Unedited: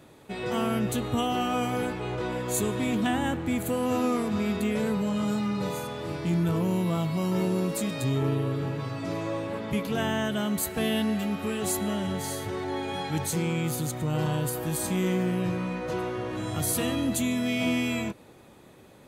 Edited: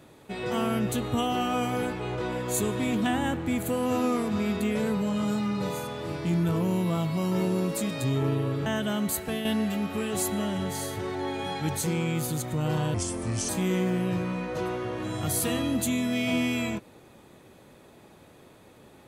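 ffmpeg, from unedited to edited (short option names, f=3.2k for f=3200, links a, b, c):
-filter_complex "[0:a]asplit=5[a][b][c][d][e];[a]atrim=end=8.662[f];[b]atrim=start=10.148:end=10.94,asetpts=PTS-STARTPTS,afade=t=out:st=0.502:d=0.29:silence=0.446684[g];[c]atrim=start=10.94:end=14.434,asetpts=PTS-STARTPTS,afade=t=in:d=0.004:c=hsin:silence=0.446684[h];[d]atrim=start=14.43:end=14.82,asetpts=PTS-STARTPTS,asetrate=31311,aresample=44100[i];[e]atrim=start=14.816[j];[g][h]concat=n=2:v=0:a=1[k];[f][k]acrossfade=d=0.004:c1=hsin:c2=hsin[l];[l][i]acrossfade=d=0.004:c1=hsin:c2=hsin[m];[m][j]acrossfade=d=0.004:c1=hsin:c2=hsin"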